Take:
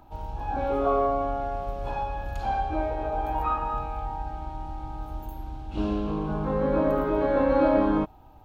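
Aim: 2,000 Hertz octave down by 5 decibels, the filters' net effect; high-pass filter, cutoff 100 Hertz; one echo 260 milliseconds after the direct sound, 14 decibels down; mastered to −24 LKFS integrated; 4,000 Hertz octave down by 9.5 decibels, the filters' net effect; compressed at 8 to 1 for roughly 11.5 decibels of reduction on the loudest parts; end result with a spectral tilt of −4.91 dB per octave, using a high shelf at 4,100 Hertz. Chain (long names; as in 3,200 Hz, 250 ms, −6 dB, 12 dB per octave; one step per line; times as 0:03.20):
high-pass filter 100 Hz
parametric band 2,000 Hz −4.5 dB
parametric band 4,000 Hz −8.5 dB
high-shelf EQ 4,100 Hz −4.5 dB
downward compressor 8 to 1, threshold −30 dBFS
single-tap delay 260 ms −14 dB
level +11 dB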